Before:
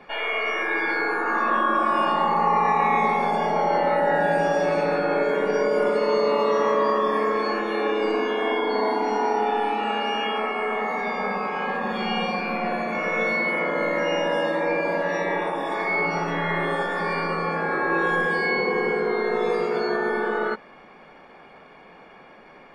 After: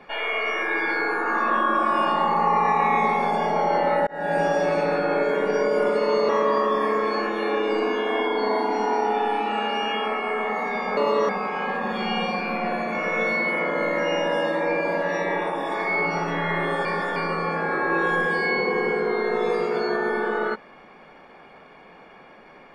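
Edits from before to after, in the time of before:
4.07–4.39 s: fade in
6.29–6.61 s: move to 11.29 s
16.85–17.16 s: reverse

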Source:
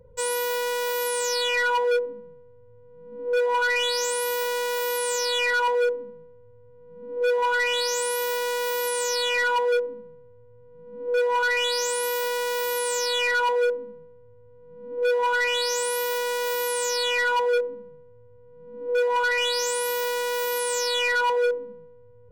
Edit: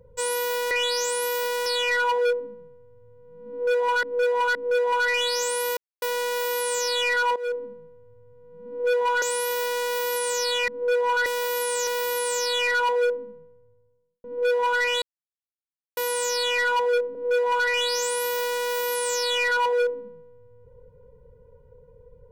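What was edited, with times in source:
0.71–1.32 s: swap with 11.52–12.47 s
3.17–3.69 s: loop, 3 plays
4.39 s: insert silence 0.25 s
5.73–6.00 s: fade in, from -16 dB
7.59–7.93 s: delete
9.39–10.94 s: delete
13.69–14.84 s: studio fade out
15.62–16.57 s: mute
17.75–18.79 s: delete

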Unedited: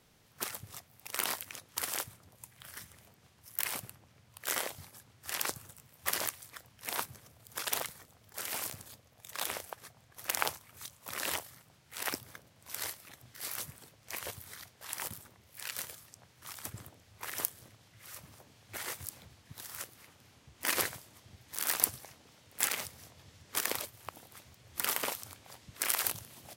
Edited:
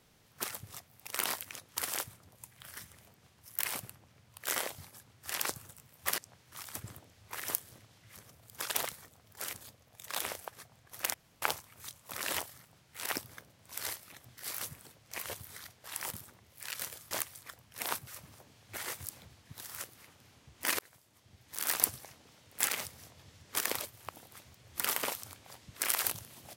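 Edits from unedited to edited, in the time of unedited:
6.18–7.14 s: swap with 16.08–18.07 s
8.50–8.78 s: delete
10.39 s: insert room tone 0.28 s
20.79–21.72 s: fade in

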